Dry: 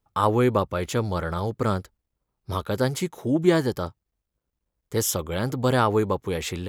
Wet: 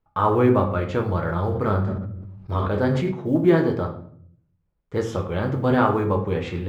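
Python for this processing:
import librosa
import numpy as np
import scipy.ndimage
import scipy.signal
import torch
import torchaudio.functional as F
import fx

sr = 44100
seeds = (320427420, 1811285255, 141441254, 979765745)

y = scipy.signal.sosfilt(scipy.signal.butter(2, 2300.0, 'lowpass', fs=sr, output='sos'), x)
y = fx.quant_float(y, sr, bits=6)
y = fx.room_shoebox(y, sr, seeds[0], volume_m3=79.0, walls='mixed', distance_m=0.57)
y = fx.sustainer(y, sr, db_per_s=34.0, at=(1.23, 3.12))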